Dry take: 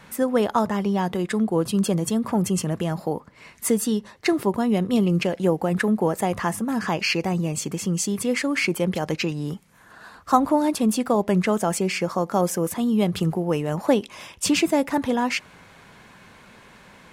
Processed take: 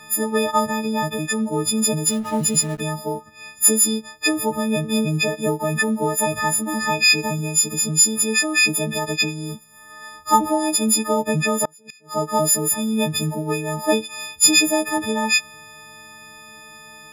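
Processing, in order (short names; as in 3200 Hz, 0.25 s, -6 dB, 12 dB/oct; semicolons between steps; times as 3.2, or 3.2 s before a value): frequency quantiser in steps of 6 st; 2.06–2.8 backlash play -29 dBFS; 11.65–12.14 flipped gate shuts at -11 dBFS, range -32 dB; gain -1 dB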